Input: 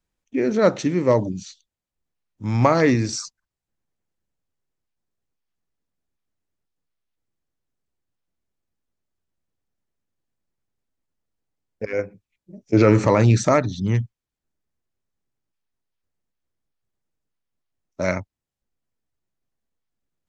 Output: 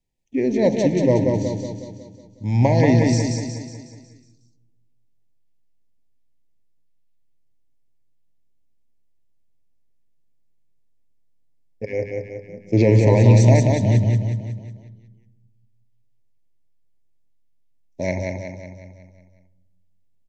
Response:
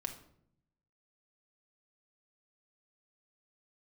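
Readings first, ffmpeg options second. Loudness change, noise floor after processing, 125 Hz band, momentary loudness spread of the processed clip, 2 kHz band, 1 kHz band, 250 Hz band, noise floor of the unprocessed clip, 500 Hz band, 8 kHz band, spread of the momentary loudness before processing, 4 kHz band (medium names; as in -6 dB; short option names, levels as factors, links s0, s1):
+1.5 dB, -58 dBFS, +6.0 dB, 21 LU, -2.0 dB, -4.0 dB, +2.0 dB, under -85 dBFS, +0.5 dB, -0.5 dB, 16 LU, -0.5 dB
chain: -filter_complex "[0:a]asuperstop=centerf=1300:order=8:qfactor=1.6,aecho=1:1:183|366|549|732|915|1098|1281:0.668|0.341|0.174|0.0887|0.0452|0.0231|0.0118,asplit=2[s0][s1];[1:a]atrim=start_sample=2205,asetrate=25137,aresample=44100,lowshelf=f=440:g=11.5[s2];[s1][s2]afir=irnorm=-1:irlink=0,volume=0.251[s3];[s0][s3]amix=inputs=2:normalize=0,volume=0.596"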